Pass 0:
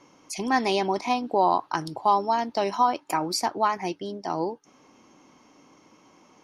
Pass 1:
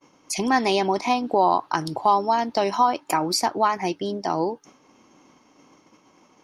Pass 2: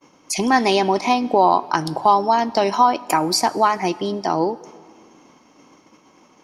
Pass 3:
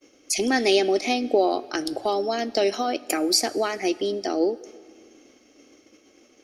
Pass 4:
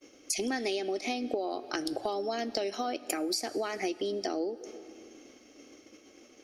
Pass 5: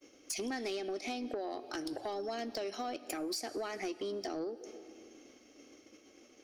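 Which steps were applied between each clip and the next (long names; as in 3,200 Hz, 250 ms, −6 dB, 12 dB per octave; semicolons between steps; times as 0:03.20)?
downward expander −49 dBFS; in parallel at +2.5 dB: downward compressor, threshold −31 dBFS, peak gain reduction 14.5 dB
mains-hum notches 60/120 Hz; dense smooth reverb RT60 2.1 s, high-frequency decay 0.8×, DRR 18 dB; level +4 dB
phaser with its sweep stopped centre 400 Hz, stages 4
downward compressor 10 to 1, threshold −29 dBFS, peak gain reduction 14.5 dB
soft clipping −26.5 dBFS, distortion −16 dB; level −4 dB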